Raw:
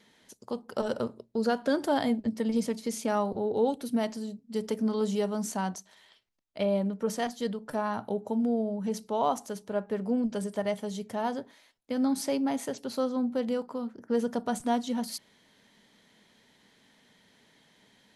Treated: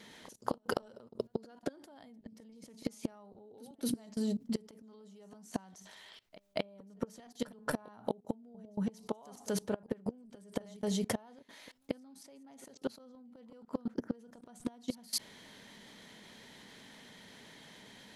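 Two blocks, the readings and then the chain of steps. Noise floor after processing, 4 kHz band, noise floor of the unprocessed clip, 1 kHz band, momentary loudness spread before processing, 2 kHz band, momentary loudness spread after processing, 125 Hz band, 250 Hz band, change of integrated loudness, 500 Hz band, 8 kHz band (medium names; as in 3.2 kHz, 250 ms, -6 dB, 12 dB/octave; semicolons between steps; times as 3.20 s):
-64 dBFS, -4.5 dB, -64 dBFS, -13.5 dB, 8 LU, -7.0 dB, 18 LU, -5.5 dB, -10.0 dB, -9.0 dB, -11.5 dB, -4.5 dB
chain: inverted gate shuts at -24 dBFS, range -26 dB; level held to a coarse grid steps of 23 dB; pre-echo 229 ms -21 dB; trim +14 dB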